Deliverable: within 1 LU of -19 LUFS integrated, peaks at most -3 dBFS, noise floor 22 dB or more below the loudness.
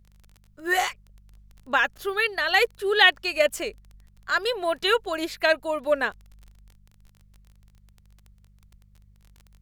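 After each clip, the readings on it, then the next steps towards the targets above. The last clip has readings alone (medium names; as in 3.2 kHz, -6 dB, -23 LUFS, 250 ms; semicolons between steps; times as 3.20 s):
tick rate 22 per s; hum 50 Hz; highest harmonic 200 Hz; hum level -53 dBFS; loudness -23.5 LUFS; peak level -3.5 dBFS; loudness target -19.0 LUFS
-> de-click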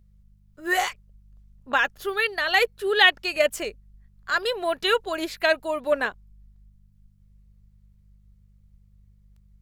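tick rate 0.42 per s; hum 50 Hz; highest harmonic 200 Hz; hum level -53 dBFS
-> de-hum 50 Hz, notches 4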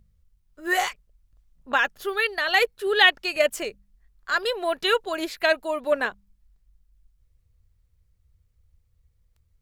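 hum not found; loudness -23.5 LUFS; peak level -3.5 dBFS; loudness target -19.0 LUFS
-> trim +4.5 dB; peak limiter -3 dBFS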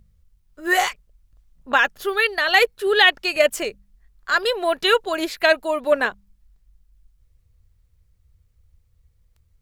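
loudness -19.5 LUFS; peak level -3.0 dBFS; noise floor -63 dBFS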